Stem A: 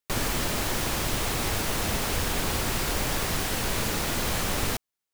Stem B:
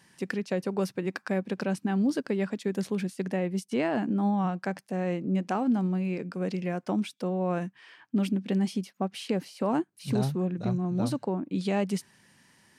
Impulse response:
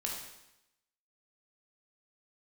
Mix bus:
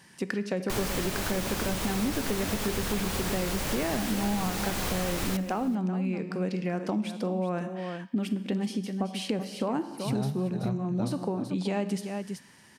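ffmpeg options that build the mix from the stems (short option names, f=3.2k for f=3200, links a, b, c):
-filter_complex "[0:a]adelay=600,volume=0.5dB,asplit=3[a][b][c];[b]volume=-15dB[d];[c]volume=-19dB[e];[1:a]volume=2.5dB,asplit=3[f][g][h];[g]volume=-9dB[i];[h]volume=-9.5dB[j];[2:a]atrim=start_sample=2205[k];[d][i]amix=inputs=2:normalize=0[l];[l][k]afir=irnorm=-1:irlink=0[m];[e][j]amix=inputs=2:normalize=0,aecho=0:1:380:1[n];[a][f][m][n]amix=inputs=4:normalize=0,acompressor=threshold=-28dB:ratio=3"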